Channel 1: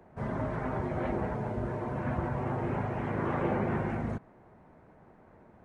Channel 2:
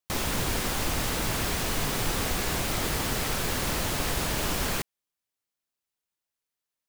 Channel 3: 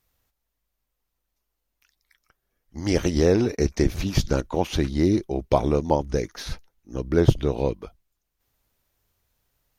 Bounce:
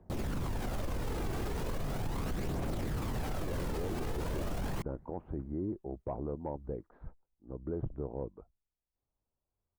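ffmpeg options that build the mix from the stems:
-filter_complex "[0:a]aemphasis=mode=reproduction:type=riaa,aeval=exprs='(mod(5.01*val(0)+1,2)-1)/5.01':c=same,volume=-14.5dB[a];[1:a]tiltshelf=f=1.2k:g=8.5,volume=-1dB[b];[2:a]lowpass=f=1.1k:w=0.5412,lowpass=f=1.1k:w=1.3066,asoftclip=type=tanh:threshold=-4.5dB,adelay=550,volume=-13.5dB[c];[a][b]amix=inputs=2:normalize=0,aphaser=in_gain=1:out_gain=1:delay=2.7:decay=0.36:speed=0.38:type=triangular,acompressor=threshold=-25dB:ratio=6,volume=0dB[d];[c][d]amix=inputs=2:normalize=0,alimiter=level_in=4dB:limit=-24dB:level=0:latency=1:release=14,volume=-4dB"

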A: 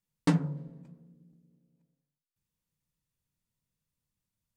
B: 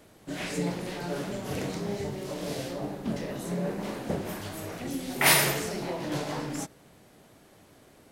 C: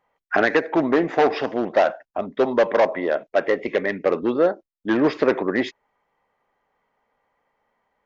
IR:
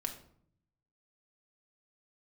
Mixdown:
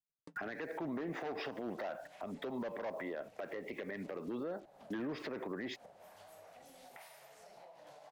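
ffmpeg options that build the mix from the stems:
-filter_complex "[0:a]aeval=exprs='val(0)*pow(10,-27*if(lt(mod(11*n/s,1),2*abs(11)/1000),1-mod(11*n/s,1)/(2*abs(11)/1000),(mod(11*n/s,1)-2*abs(11)/1000)/(1-2*abs(11)/1000))/20)':c=same,volume=-13dB[a];[1:a]lowshelf=f=500:t=q:w=3:g=-10.5,adelay=1750,volume=-17dB[b];[2:a]lowshelf=f=250:g=-7,alimiter=limit=-12dB:level=0:latency=1:release=131,acrusher=bits=8:mix=0:aa=0.5,adelay=50,volume=-0.5dB[c];[a][b]amix=inputs=2:normalize=0,equalizer=f=450:w=1.5:g=8,acompressor=threshold=-53dB:ratio=16,volume=0dB[d];[c][d]amix=inputs=2:normalize=0,acrossover=split=220[e][f];[f]acompressor=threshold=-32dB:ratio=6[g];[e][g]amix=inputs=2:normalize=0,alimiter=level_in=8.5dB:limit=-24dB:level=0:latency=1:release=103,volume=-8.5dB"

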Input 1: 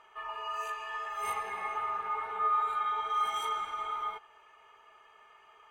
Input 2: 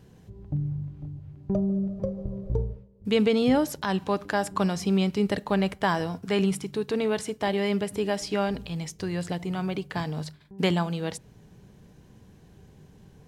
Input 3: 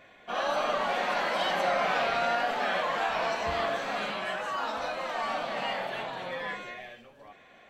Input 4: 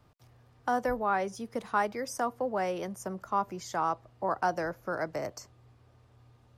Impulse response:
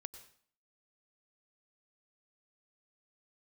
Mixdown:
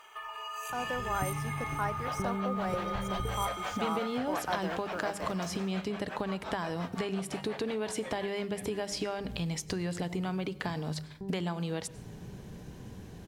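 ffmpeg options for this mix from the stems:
-filter_complex "[0:a]acompressor=threshold=-41dB:ratio=6,crystalizer=i=4:c=0,volume=0dB,asplit=3[a][b][c];[b]volume=-7.5dB[d];[c]volume=-18.5dB[e];[1:a]acompressor=threshold=-31dB:ratio=6,adelay=700,volume=0dB,asplit=2[f][g];[g]volume=-9dB[h];[2:a]aeval=exprs='val(0)*pow(10,-21*(0.5-0.5*cos(2*PI*5.7*n/s))/20)':c=same,adelay=1750,volume=-4dB,asplit=2[i][j];[j]volume=-20.5dB[k];[3:a]aeval=exprs='val(0)*gte(abs(val(0)),0.00447)':c=same,adelay=50,volume=-12dB[l];[a][f][i]amix=inputs=3:normalize=0,acompressor=threshold=-41dB:ratio=6,volume=0dB[m];[4:a]atrim=start_sample=2205[n];[d][h]amix=inputs=2:normalize=0[o];[o][n]afir=irnorm=-1:irlink=0[p];[e][k]amix=inputs=2:normalize=0,aecho=0:1:510:1[q];[l][m][p][q]amix=inputs=4:normalize=0,bandreject=f=50:t=h:w=6,bandreject=f=100:t=h:w=6,bandreject=f=150:t=h:w=6,bandreject=f=200:t=h:w=6,dynaudnorm=f=220:g=7:m=6dB"

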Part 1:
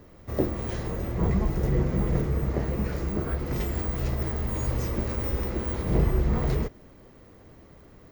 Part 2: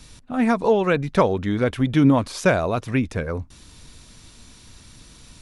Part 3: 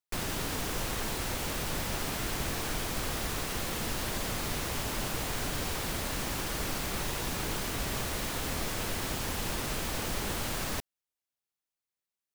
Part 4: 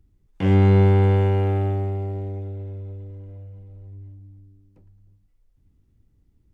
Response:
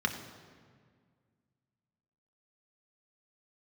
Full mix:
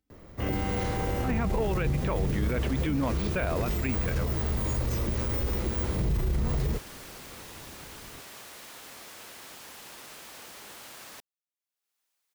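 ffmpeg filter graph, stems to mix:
-filter_complex "[0:a]acrossover=split=180|3000[a][b][c];[b]acompressor=threshold=-34dB:ratio=6[d];[a][d][c]amix=inputs=3:normalize=0,adelay=100,volume=1.5dB[e];[1:a]asoftclip=type=tanh:threshold=-6.5dB,lowpass=f=2.7k:t=q:w=1.9,adelay=900,volume=-7dB[f];[2:a]highpass=f=640:p=1,acompressor=mode=upward:threshold=-52dB:ratio=2.5,adelay=400,volume=-9.5dB[g];[3:a]highpass=f=740:p=1,aecho=1:1:3.9:0.65,volume=-6dB[h];[e][f][g][h]amix=inputs=4:normalize=0,alimiter=limit=-20dB:level=0:latency=1:release=19"

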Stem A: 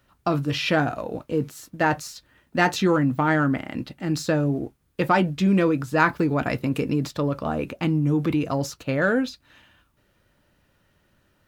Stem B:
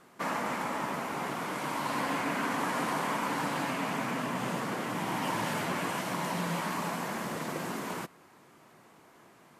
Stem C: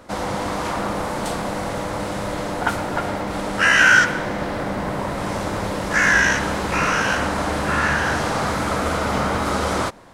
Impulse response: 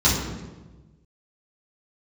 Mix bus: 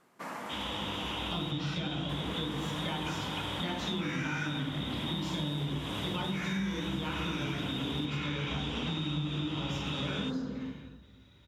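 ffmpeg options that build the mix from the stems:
-filter_complex "[0:a]acompressor=threshold=-38dB:ratio=2,adelay=1050,volume=-3dB,asplit=2[a][b];[b]volume=-17dB[c];[1:a]volume=-8dB,asplit=3[d][e][f];[d]atrim=end=1.51,asetpts=PTS-STARTPTS,afade=t=out:st=1.506:d=0.004:c=hsin[g];[e]atrim=start=1.51:end=2.09,asetpts=PTS-STARTPTS,volume=0[h];[f]atrim=start=2.09,asetpts=PTS-STARTPTS,afade=t=in:d=0.004:c=hsin[i];[g][h][i]concat=n=3:v=0:a=1[j];[2:a]equalizer=f=85:t=o:w=2.7:g=-5.5,adelay=400,volume=-13.5dB,asplit=2[k][l];[l]volume=-21.5dB[m];[a][k]amix=inputs=2:normalize=0,lowpass=f=3.3k:t=q:w=0.5098,lowpass=f=3.3k:t=q:w=0.6013,lowpass=f=3.3k:t=q:w=0.9,lowpass=f=3.3k:t=q:w=2.563,afreqshift=-3900,alimiter=level_in=1dB:limit=-24dB:level=0:latency=1,volume=-1dB,volume=0dB[n];[3:a]atrim=start_sample=2205[o];[c][m]amix=inputs=2:normalize=0[p];[p][o]afir=irnorm=-1:irlink=0[q];[j][n][q]amix=inputs=3:normalize=0,acompressor=threshold=-31dB:ratio=6"

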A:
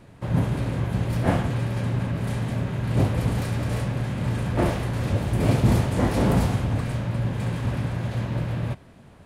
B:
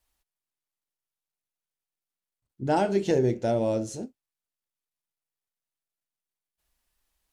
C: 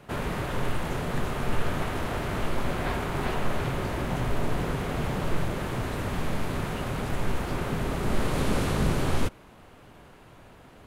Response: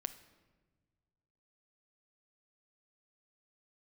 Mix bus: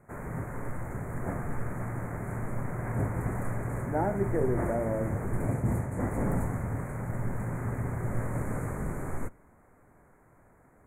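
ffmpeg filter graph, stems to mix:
-filter_complex "[0:a]dynaudnorm=f=470:g=5:m=11.5dB,volume=-16.5dB[a];[1:a]lowpass=2.3k,adelay=1250,volume=-5.5dB[b];[2:a]volume=-10.5dB,asplit=3[c][d][e];[c]atrim=end=5.46,asetpts=PTS-STARTPTS,afade=t=out:st=5.456:d=0.004:c=hsin[f];[d]atrim=start=5.46:end=6,asetpts=PTS-STARTPTS,volume=0[g];[e]atrim=start=6,asetpts=PTS-STARTPTS,afade=t=in:d=0.004:c=hsin[h];[f][g][h]concat=n=3:v=0:a=1,asplit=2[i][j];[j]volume=-13dB[k];[3:a]atrim=start_sample=2205[l];[k][l]afir=irnorm=-1:irlink=0[m];[a][b][i][m]amix=inputs=4:normalize=0,asuperstop=centerf=3900:order=12:qfactor=0.84"

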